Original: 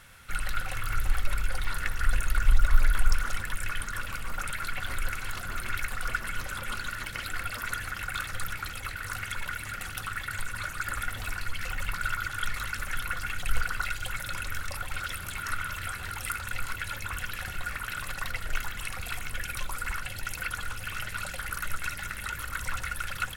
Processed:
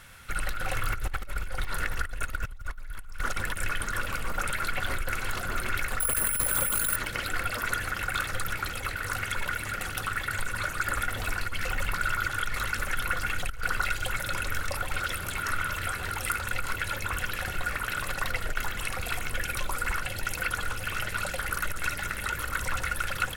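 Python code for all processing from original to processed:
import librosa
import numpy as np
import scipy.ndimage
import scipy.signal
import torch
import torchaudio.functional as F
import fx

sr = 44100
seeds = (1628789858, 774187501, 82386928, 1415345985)

y = fx.chain(x, sr, fx.over_compress(threshold_db=-31.0, ratio=-0.5),
    fx.resample_bad(factor=4, down='filtered', up='zero_stuff'), at=(6.0, 6.96))
y = fx.over_compress(y, sr, threshold_db=-28.0, ratio=-1.0)
y = fx.dynamic_eq(y, sr, hz=460.0, q=0.8, threshold_db=-51.0, ratio=4.0, max_db=7)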